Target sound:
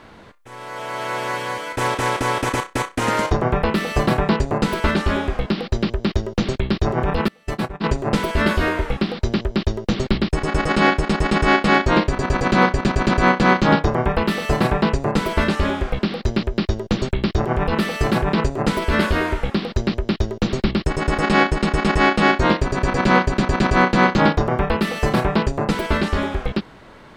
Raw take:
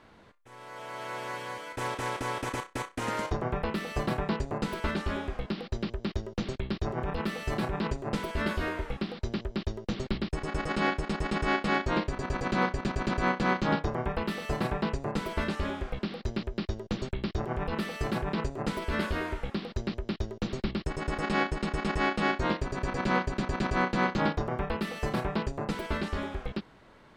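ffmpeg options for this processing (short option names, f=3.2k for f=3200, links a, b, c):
-filter_complex "[0:a]acontrast=52,asettb=1/sr,asplit=3[a][b][c];[a]atrim=end=7.284[d];[b]atrim=start=7.28:end=7.84,asetpts=PTS-STARTPTS,afade=t=in:d=0.004:c=qsin,afade=t=out:st=0.556:d=0.004:c=qsin,agate=range=-28dB:threshold=-22dB:ratio=16:detection=peak[e];[c]atrim=start=7.836[f];[d][e]acrossfade=d=0.004:c1=hsin:c2=qsin[g];[g][f]acrossfade=d=0.004:c1=qsin:c2=hsin,volume=6dB"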